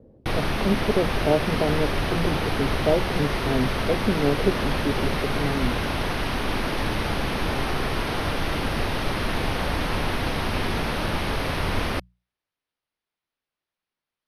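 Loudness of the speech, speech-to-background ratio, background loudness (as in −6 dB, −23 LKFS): −27.0 LKFS, −0.5 dB, −26.5 LKFS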